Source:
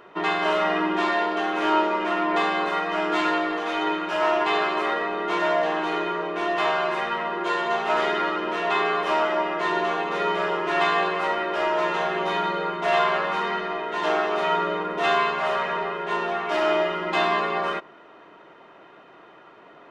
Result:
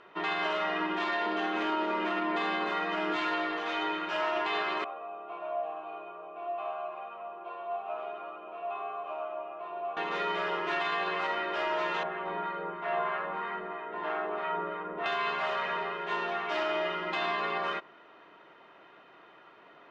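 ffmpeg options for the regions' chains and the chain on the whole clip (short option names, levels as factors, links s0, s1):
-filter_complex "[0:a]asettb=1/sr,asplit=3[s0][s1][s2];[s0]atrim=end=1.264[s3];[s1]atrim=start=1.26:end=3.16,asetpts=PTS-STARTPTS,afade=t=in:d=0.004:c=qsin,afade=t=out:st=1.896:d=0.004:c=qsin,highpass=f=220:t=q:w=2.5,bandreject=f=5600:w=23[s4];[s2]atrim=start=3.156[s5];[s3][s4]acrossfade=d=0.004:c1=hsin:c2=qsin[s6];[s6][s5]acrossfade=d=0.004:c1=qsin:c2=hsin,asettb=1/sr,asplit=3[s7][s8][s9];[s7]atrim=end=4.844[s10];[s8]atrim=start=4.84:end=9.97,asetpts=PTS-STARTPTS,afade=t=in:d=0.004:c=qsin,afade=t=out:st=5.126:d=0.004:c=qsin,asplit=3[s11][s12][s13];[s11]bandpass=f=730:t=q:w=8,volume=1[s14];[s12]bandpass=f=1090:t=q:w=8,volume=0.501[s15];[s13]bandpass=f=2440:t=q:w=8,volume=0.355[s16];[s14][s15][s16]amix=inputs=3:normalize=0,aemphasis=mode=reproduction:type=riaa[s17];[s9]atrim=start=9.966[s18];[s10][s17]acrossfade=d=0.004:c1=hsin:c2=qsin[s19];[s19][s18]acrossfade=d=0.004:c1=qsin:c2=hsin,asettb=1/sr,asplit=3[s20][s21][s22];[s20]atrim=end=12.034[s23];[s21]atrim=start=12.03:end=15.06,asetpts=PTS-STARTPTS,afade=t=in:d=0.004:c=qsin,afade=t=out:st=3.026:d=0.004:c=qsin,lowpass=1700,acrossover=split=910[s24][s25];[s24]aeval=exprs='val(0)*(1-0.5/2+0.5/2*cos(2*PI*3.1*n/s))':c=same[s26];[s25]aeval=exprs='val(0)*(1-0.5/2-0.5/2*cos(2*PI*3.1*n/s))':c=same[s27];[s26][s27]amix=inputs=2:normalize=0[s28];[s22]atrim=start=15.056[s29];[s23][s28]acrossfade=d=0.004:c1=hsin:c2=qsin[s30];[s30][s29]acrossfade=d=0.004:c1=qsin:c2=hsin,lowpass=4800,tiltshelf=f=1200:g=-3.5,alimiter=limit=0.15:level=0:latency=1:release=36,volume=0.531"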